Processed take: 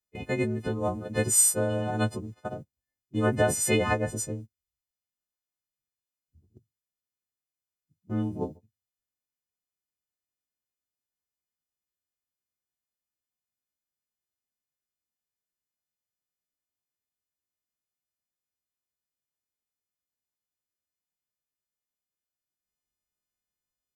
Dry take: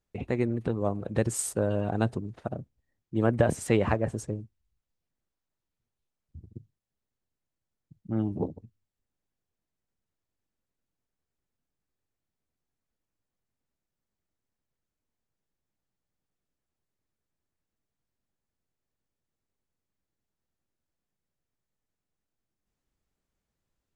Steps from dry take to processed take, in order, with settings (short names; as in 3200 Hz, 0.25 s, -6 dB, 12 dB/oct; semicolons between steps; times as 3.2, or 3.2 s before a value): frequency quantiser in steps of 3 st; added harmonics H 3 -45 dB, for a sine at -9.5 dBFS; gate -40 dBFS, range -13 dB